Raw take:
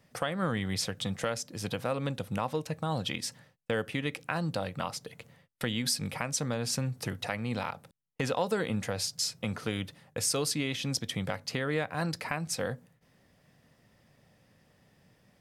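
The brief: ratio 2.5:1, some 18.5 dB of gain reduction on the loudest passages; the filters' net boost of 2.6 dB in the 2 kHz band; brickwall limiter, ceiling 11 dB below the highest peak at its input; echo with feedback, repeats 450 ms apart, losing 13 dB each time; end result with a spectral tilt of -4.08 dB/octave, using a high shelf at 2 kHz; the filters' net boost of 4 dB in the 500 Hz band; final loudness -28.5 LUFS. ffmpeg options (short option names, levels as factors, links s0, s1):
-af "equalizer=f=500:t=o:g=4.5,highshelf=f=2000:g=-3.5,equalizer=f=2000:t=o:g=5,acompressor=threshold=0.00251:ratio=2.5,alimiter=level_in=4.73:limit=0.0631:level=0:latency=1,volume=0.211,aecho=1:1:450|900|1350:0.224|0.0493|0.0108,volume=11.2"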